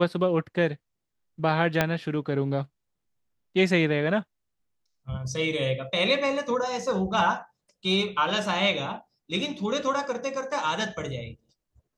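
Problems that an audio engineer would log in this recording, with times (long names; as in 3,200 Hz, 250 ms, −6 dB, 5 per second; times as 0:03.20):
0:01.81: click −7 dBFS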